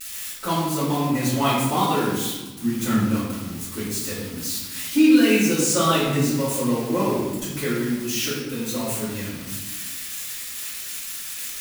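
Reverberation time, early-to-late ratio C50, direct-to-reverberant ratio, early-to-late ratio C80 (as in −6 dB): 1.2 s, 0.5 dB, −12.0 dB, 3.0 dB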